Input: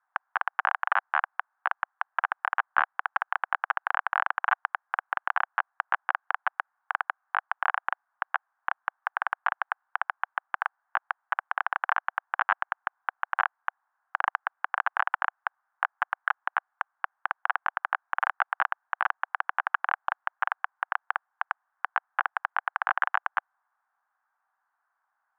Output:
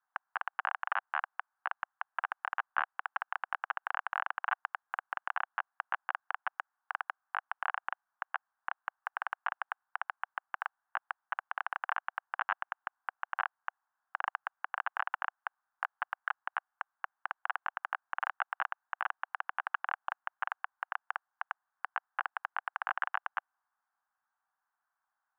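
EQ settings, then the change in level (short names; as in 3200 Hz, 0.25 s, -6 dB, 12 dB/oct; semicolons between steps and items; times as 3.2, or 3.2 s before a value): dynamic EQ 2800 Hz, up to +5 dB, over -56 dBFS, Q 6.8; -8.0 dB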